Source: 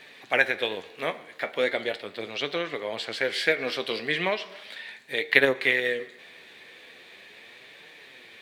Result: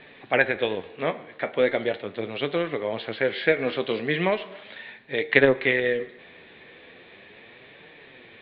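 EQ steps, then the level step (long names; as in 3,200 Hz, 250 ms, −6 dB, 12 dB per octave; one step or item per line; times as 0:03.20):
Butterworth low-pass 3,900 Hz 48 dB per octave
spectral tilt −2.5 dB per octave
+2.0 dB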